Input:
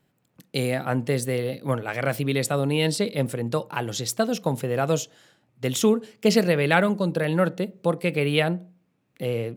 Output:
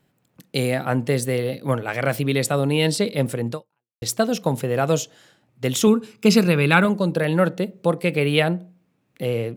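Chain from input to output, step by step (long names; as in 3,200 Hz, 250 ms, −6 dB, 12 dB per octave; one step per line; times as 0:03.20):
0:03.51–0:04.02: fade out exponential
0:05.87–0:06.85: comb filter 0.8 ms, depth 54%
level +3 dB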